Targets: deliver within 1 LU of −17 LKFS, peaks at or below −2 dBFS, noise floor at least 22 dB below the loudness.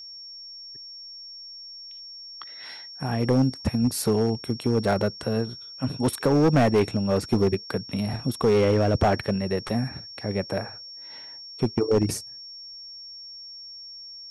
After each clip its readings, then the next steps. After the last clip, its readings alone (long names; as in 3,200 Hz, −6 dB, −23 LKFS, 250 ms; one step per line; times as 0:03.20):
share of clipped samples 1.2%; peaks flattened at −14.5 dBFS; interfering tone 5,500 Hz; level of the tone −39 dBFS; integrated loudness −24.5 LKFS; sample peak −14.5 dBFS; target loudness −17.0 LKFS
→ clipped peaks rebuilt −14.5 dBFS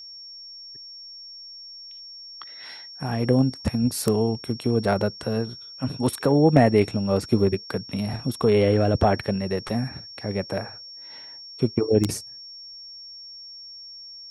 share of clipped samples 0.0%; interfering tone 5,500 Hz; level of the tone −39 dBFS
→ notch filter 5,500 Hz, Q 30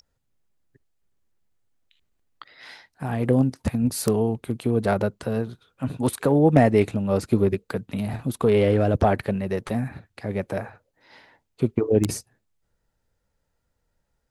interfering tone none found; integrated loudness −23.5 LKFS; sample peak −5.5 dBFS; target loudness −17.0 LKFS
→ level +6.5 dB
brickwall limiter −2 dBFS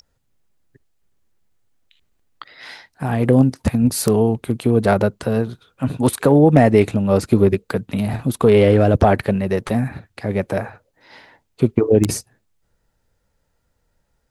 integrated loudness −17.5 LKFS; sample peak −2.0 dBFS; background noise floor −69 dBFS